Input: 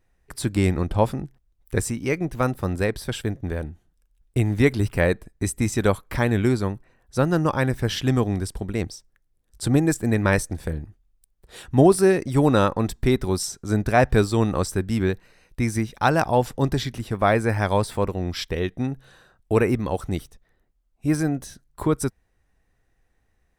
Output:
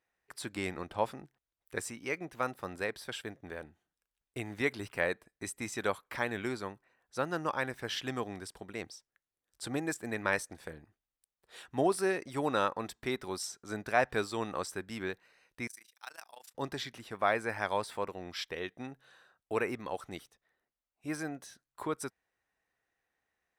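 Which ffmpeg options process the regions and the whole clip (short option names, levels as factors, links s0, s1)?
-filter_complex "[0:a]asettb=1/sr,asplit=3[s0][s1][s2];[s0]atrim=end=15.674[s3];[s1]atrim=start=15.67:end=16.55,asetpts=PTS-STARTPTS,afade=t=in:d=0.004:c=qsin,afade=t=out:st=0.876:d=0.004:c=qsin,aderivative,tremolo=f=27:d=0.919[s4];[s2]atrim=start=16.546[s5];[s3][s4]acrossfade=d=0.004:c1=hsin:c2=qsin[s6];[s6][s5]acrossfade=d=0.004:c1=qsin:c2=hsin,highpass=f=1100:p=1,highshelf=f=4500:g=-9,volume=0.631"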